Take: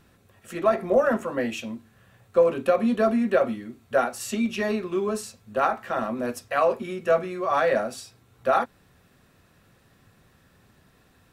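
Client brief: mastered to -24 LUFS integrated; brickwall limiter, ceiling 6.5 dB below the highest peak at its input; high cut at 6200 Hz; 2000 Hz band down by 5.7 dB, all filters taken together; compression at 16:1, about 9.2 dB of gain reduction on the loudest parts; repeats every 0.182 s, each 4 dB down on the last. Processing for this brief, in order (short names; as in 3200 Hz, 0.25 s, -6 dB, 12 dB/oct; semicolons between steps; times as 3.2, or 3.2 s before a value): LPF 6200 Hz; bell 2000 Hz -8 dB; compressor 16:1, threshold -24 dBFS; limiter -22 dBFS; feedback echo 0.182 s, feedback 63%, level -4 dB; gain +7 dB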